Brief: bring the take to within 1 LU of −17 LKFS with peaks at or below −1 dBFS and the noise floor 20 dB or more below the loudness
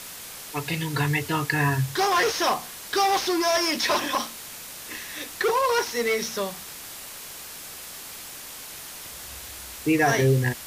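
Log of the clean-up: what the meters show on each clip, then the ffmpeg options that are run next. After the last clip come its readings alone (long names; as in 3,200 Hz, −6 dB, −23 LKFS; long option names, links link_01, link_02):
background noise floor −40 dBFS; target noise floor −44 dBFS; integrated loudness −24.0 LKFS; sample peak −8.5 dBFS; target loudness −17.0 LKFS
→ -af "afftdn=noise_reduction=6:noise_floor=-40"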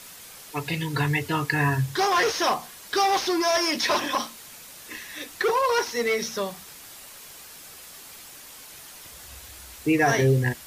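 background noise floor −45 dBFS; integrated loudness −24.0 LKFS; sample peak −8.5 dBFS; target loudness −17.0 LKFS
→ -af "volume=7dB"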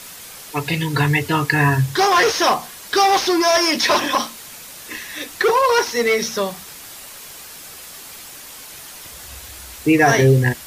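integrated loudness −17.0 LKFS; sample peak −1.5 dBFS; background noise floor −38 dBFS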